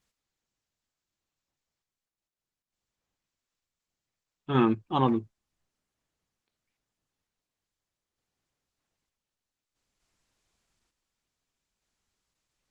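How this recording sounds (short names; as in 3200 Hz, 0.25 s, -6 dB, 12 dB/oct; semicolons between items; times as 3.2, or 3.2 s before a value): random-step tremolo 1.1 Hz, depth 85%; Opus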